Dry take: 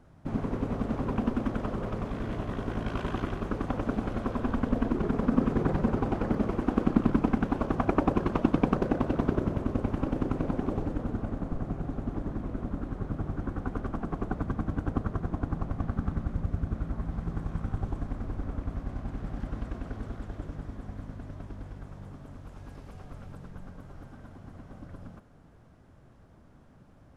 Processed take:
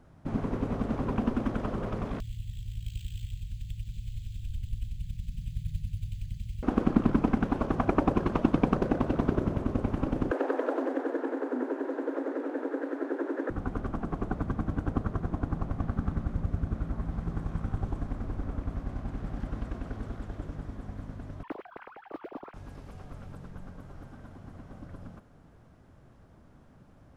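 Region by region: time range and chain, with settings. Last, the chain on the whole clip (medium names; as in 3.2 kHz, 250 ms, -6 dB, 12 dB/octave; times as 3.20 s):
2.20–6.63 s: inverse Chebyshev band-stop 310–1200 Hz, stop band 60 dB + upward compressor, threshold -34 dBFS + careless resampling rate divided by 4×, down filtered, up hold
10.31–13.50 s: peaking EQ 1.4 kHz +6.5 dB 0.6 oct + frequency shift +240 Hz
21.43–22.54 s: formants replaced by sine waves + modulation noise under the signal 13 dB + distance through air 390 m
whole clip: none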